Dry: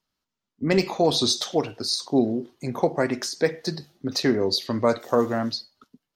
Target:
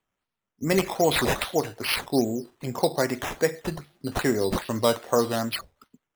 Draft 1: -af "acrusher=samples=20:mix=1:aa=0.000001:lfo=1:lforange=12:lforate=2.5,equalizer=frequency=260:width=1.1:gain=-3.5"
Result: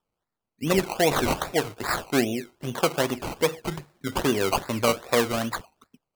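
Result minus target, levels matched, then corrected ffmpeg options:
sample-and-hold swept by an LFO: distortion +4 dB
-af "acrusher=samples=8:mix=1:aa=0.000001:lfo=1:lforange=4.8:lforate=2.5,equalizer=frequency=260:width=1.1:gain=-3.5"

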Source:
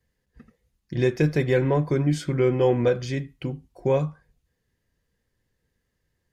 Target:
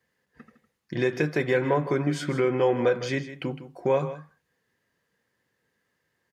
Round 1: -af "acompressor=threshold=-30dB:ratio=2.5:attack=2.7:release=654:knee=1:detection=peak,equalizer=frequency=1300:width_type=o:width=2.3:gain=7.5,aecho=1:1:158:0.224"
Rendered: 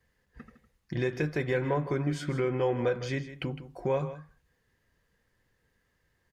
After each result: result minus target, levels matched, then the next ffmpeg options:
downward compressor: peak gain reduction +5.5 dB; 125 Hz band +3.5 dB
-af "acompressor=threshold=-20.5dB:ratio=2.5:attack=2.7:release=654:knee=1:detection=peak,equalizer=frequency=1300:width_type=o:width=2.3:gain=7.5,aecho=1:1:158:0.224"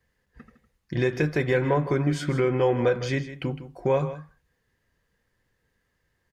125 Hz band +3.5 dB
-af "acompressor=threshold=-20.5dB:ratio=2.5:attack=2.7:release=654:knee=1:detection=peak,highpass=160,equalizer=frequency=1300:width_type=o:width=2.3:gain=7.5,aecho=1:1:158:0.224"

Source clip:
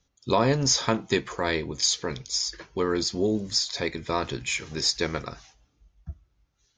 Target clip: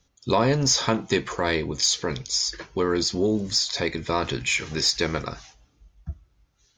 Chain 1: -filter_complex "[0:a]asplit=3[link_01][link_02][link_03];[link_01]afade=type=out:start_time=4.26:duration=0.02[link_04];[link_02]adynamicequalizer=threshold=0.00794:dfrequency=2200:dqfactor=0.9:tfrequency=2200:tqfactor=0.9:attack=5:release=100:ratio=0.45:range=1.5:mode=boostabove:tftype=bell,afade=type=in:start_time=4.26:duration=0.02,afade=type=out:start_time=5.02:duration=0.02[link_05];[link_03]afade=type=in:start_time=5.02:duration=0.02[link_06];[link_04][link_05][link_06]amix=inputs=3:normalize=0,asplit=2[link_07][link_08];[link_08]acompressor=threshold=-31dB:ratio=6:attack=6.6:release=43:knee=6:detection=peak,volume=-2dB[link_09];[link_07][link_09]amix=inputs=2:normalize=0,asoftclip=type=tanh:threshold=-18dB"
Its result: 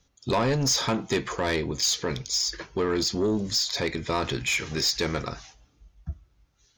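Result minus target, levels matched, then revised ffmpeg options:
soft clipping: distortion +16 dB
-filter_complex "[0:a]asplit=3[link_01][link_02][link_03];[link_01]afade=type=out:start_time=4.26:duration=0.02[link_04];[link_02]adynamicequalizer=threshold=0.00794:dfrequency=2200:dqfactor=0.9:tfrequency=2200:tqfactor=0.9:attack=5:release=100:ratio=0.45:range=1.5:mode=boostabove:tftype=bell,afade=type=in:start_time=4.26:duration=0.02,afade=type=out:start_time=5.02:duration=0.02[link_05];[link_03]afade=type=in:start_time=5.02:duration=0.02[link_06];[link_04][link_05][link_06]amix=inputs=3:normalize=0,asplit=2[link_07][link_08];[link_08]acompressor=threshold=-31dB:ratio=6:attack=6.6:release=43:knee=6:detection=peak,volume=-2dB[link_09];[link_07][link_09]amix=inputs=2:normalize=0,asoftclip=type=tanh:threshold=-6.5dB"

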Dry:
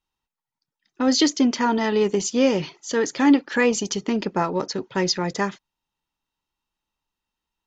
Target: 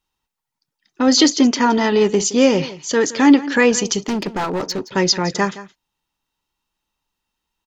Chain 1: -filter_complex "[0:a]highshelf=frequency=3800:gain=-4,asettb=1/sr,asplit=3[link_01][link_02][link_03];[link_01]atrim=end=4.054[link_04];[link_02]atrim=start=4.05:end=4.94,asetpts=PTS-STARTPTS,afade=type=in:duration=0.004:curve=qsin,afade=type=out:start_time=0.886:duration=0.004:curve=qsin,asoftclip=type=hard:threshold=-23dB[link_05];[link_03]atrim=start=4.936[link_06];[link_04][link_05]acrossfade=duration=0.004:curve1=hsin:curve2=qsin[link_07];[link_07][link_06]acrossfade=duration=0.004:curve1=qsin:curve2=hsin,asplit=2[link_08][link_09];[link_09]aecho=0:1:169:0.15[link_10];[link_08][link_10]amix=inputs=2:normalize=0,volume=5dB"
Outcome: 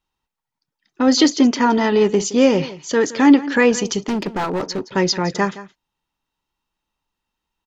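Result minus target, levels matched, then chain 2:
8,000 Hz band −4.0 dB
-filter_complex "[0:a]highshelf=frequency=3800:gain=2.5,asettb=1/sr,asplit=3[link_01][link_02][link_03];[link_01]atrim=end=4.054[link_04];[link_02]atrim=start=4.05:end=4.94,asetpts=PTS-STARTPTS,afade=type=in:duration=0.004:curve=qsin,afade=type=out:start_time=0.886:duration=0.004:curve=qsin,asoftclip=type=hard:threshold=-23dB[link_05];[link_03]atrim=start=4.936[link_06];[link_04][link_05]acrossfade=duration=0.004:curve1=hsin:curve2=qsin[link_07];[link_07][link_06]acrossfade=duration=0.004:curve1=qsin:curve2=hsin,asplit=2[link_08][link_09];[link_09]aecho=0:1:169:0.15[link_10];[link_08][link_10]amix=inputs=2:normalize=0,volume=5dB"

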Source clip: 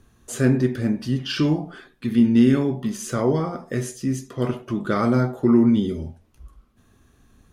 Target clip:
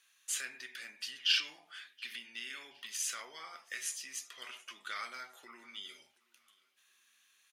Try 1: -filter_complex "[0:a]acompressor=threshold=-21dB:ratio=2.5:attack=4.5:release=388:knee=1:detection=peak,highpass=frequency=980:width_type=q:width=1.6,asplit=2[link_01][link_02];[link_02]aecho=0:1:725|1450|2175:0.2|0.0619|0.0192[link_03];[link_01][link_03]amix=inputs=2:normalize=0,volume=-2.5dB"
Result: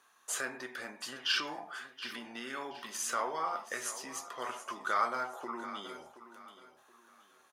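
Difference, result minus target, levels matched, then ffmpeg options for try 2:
1,000 Hz band +13.0 dB; echo-to-direct +11.5 dB
-filter_complex "[0:a]acompressor=threshold=-21dB:ratio=2.5:attack=4.5:release=388:knee=1:detection=peak,highpass=frequency=2400:width_type=q:width=1.6,asplit=2[link_01][link_02];[link_02]aecho=0:1:725|1450:0.0531|0.0165[link_03];[link_01][link_03]amix=inputs=2:normalize=0,volume=-2.5dB"

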